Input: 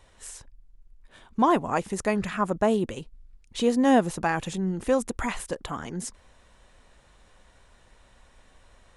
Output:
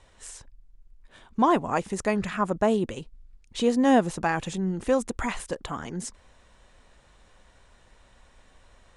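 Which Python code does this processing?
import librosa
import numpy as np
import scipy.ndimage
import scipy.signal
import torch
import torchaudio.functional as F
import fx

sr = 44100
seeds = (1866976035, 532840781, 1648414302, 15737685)

y = scipy.signal.sosfilt(scipy.signal.butter(4, 9800.0, 'lowpass', fs=sr, output='sos'), x)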